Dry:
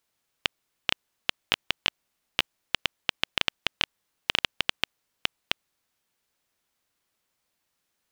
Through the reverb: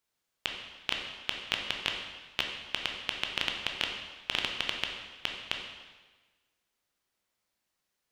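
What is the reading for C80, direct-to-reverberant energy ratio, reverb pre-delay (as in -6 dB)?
6.0 dB, 1.5 dB, 7 ms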